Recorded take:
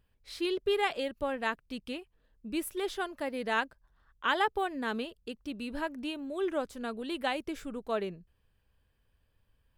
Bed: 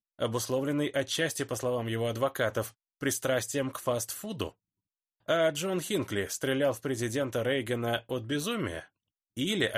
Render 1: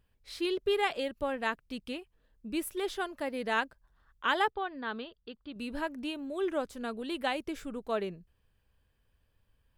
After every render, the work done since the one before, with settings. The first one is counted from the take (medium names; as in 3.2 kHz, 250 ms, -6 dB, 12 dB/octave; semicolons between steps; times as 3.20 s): 4.50–5.56 s: rippled Chebyshev low-pass 4.8 kHz, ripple 6 dB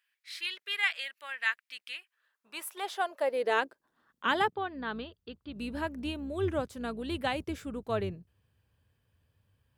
octave divider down 2 oct, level -6 dB; high-pass sweep 1.9 kHz -> 94 Hz, 1.93–5.04 s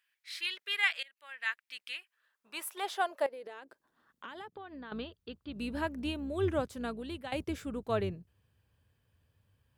1.03–1.83 s: fade in, from -22 dB; 3.26–4.92 s: compression 10:1, threshold -42 dBFS; 6.79–7.32 s: fade out, to -14.5 dB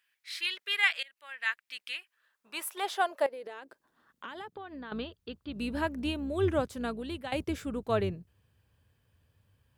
trim +3 dB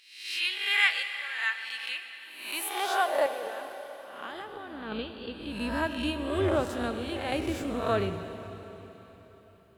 reverse spectral sustain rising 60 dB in 0.69 s; plate-style reverb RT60 4 s, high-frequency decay 0.95×, DRR 7.5 dB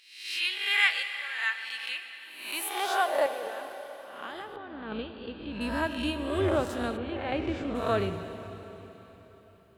4.56–5.61 s: distance through air 190 m; 6.96–7.74 s: low-pass 2.1 kHz -> 4 kHz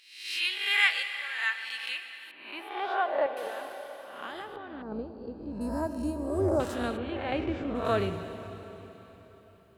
2.31–3.37 s: distance through air 410 m; 4.82–6.60 s: FFT filter 800 Hz 0 dB, 3.4 kHz -29 dB, 4.9 kHz -1 dB; 7.44–7.85 s: treble shelf 4.1 kHz -11 dB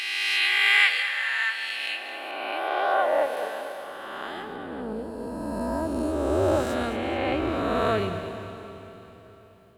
reverse spectral sustain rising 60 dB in 2.65 s; on a send: two-band feedback delay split 490 Hz, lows 115 ms, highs 217 ms, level -12 dB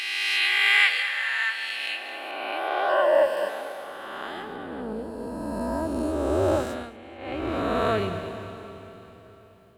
2.89–3.49 s: rippled EQ curve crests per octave 1.3, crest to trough 12 dB; 6.53–7.57 s: dip -15 dB, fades 0.39 s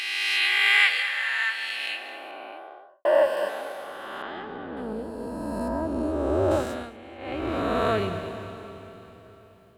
1.81–3.05 s: studio fade out; 4.22–4.77 s: distance through air 160 m; 5.68–6.51 s: treble shelf 3.5 kHz -11 dB